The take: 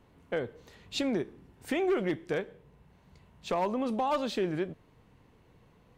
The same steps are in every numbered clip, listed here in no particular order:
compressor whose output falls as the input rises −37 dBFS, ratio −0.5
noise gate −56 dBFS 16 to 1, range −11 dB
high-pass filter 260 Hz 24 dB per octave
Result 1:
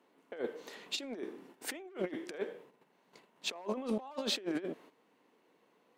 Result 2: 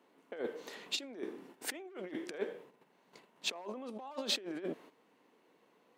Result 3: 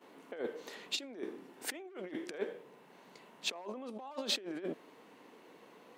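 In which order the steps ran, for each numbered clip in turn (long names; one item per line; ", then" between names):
noise gate, then high-pass filter, then compressor whose output falls as the input rises
noise gate, then compressor whose output falls as the input rises, then high-pass filter
compressor whose output falls as the input rises, then noise gate, then high-pass filter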